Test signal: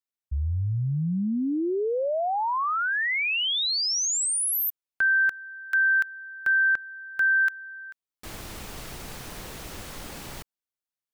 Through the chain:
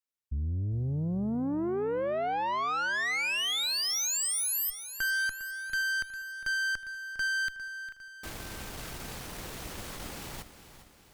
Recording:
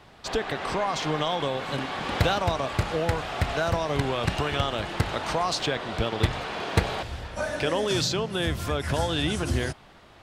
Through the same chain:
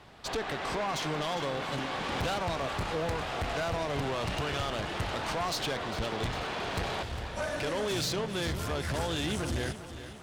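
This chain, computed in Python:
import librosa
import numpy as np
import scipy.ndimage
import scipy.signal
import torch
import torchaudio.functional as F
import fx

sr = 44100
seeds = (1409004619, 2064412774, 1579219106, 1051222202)

y = fx.tube_stage(x, sr, drive_db=28.0, bias=0.45)
y = fx.echo_crushed(y, sr, ms=404, feedback_pct=55, bits=11, wet_db=-12.5)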